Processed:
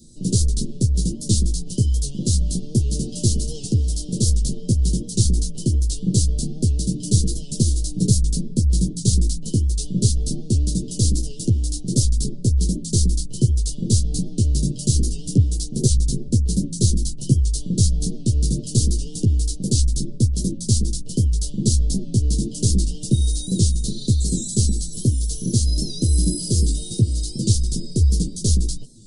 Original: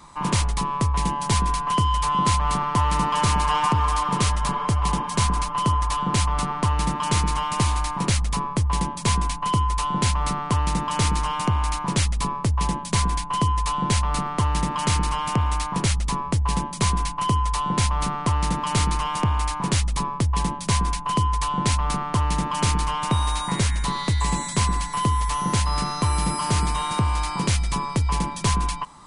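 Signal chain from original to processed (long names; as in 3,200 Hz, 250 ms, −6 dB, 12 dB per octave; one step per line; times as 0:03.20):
multi-voice chorus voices 6, 0.26 Hz, delay 13 ms, depth 4.8 ms
inverse Chebyshev band-stop filter 910–2,100 Hz, stop band 60 dB
wow of a warped record 78 rpm, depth 100 cents
level +7.5 dB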